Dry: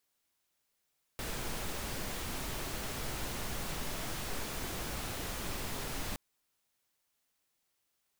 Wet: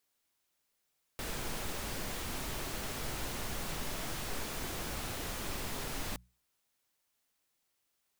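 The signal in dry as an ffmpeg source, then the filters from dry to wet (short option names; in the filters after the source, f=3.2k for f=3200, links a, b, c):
-f lavfi -i "anoisesrc=c=pink:a=0.0646:d=4.97:r=44100:seed=1"
-af "bandreject=f=60:t=h:w=6,bandreject=f=120:t=h:w=6,bandreject=f=180:t=h:w=6"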